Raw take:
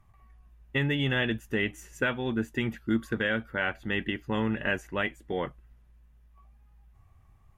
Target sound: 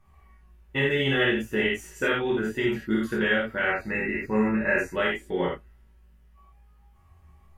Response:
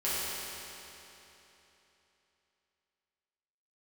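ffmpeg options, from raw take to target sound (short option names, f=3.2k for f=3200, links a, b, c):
-filter_complex "[0:a]asettb=1/sr,asplit=3[a][b][c];[a]atrim=end=3.634[d];[b]atrim=start=3.63:end=4.95,asetpts=PTS-STARTPTS,afade=t=in:d=0.004:c=qsin,afade=t=out:st=1.316:d=0.004:c=qsin,asuperstop=centerf=3200:order=12:qfactor=2.9[e];[c]atrim=start=4.946[f];[d][e]acrossfade=d=0.004:c1=hsin:c2=qsin[g];[g][f]acrossfade=d=0.004:c1=qsin:c2=hsin[h];[1:a]atrim=start_sample=2205,atrim=end_sample=4410[i];[h][i]afir=irnorm=-1:irlink=0"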